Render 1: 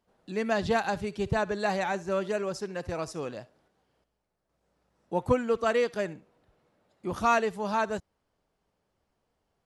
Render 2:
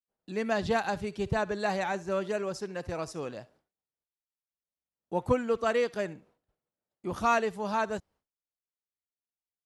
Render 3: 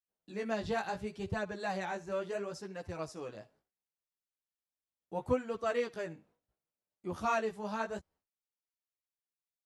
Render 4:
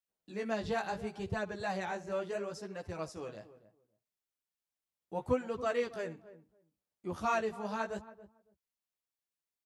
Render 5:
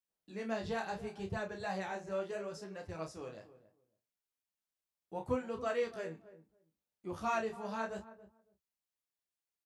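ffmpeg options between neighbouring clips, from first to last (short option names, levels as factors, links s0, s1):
-af "agate=range=0.0224:threshold=0.00178:ratio=3:detection=peak,volume=0.841"
-af "flanger=delay=9.9:depth=9.4:regen=2:speed=0.72:shape=sinusoidal,volume=0.668"
-filter_complex "[0:a]asplit=2[s0][s1];[s1]adelay=278,lowpass=f=830:p=1,volume=0.2,asplit=2[s2][s3];[s3]adelay=278,lowpass=f=830:p=1,volume=0.18[s4];[s0][s2][s4]amix=inputs=3:normalize=0"
-filter_complex "[0:a]asplit=2[s0][s1];[s1]adelay=31,volume=0.473[s2];[s0][s2]amix=inputs=2:normalize=0,volume=0.668"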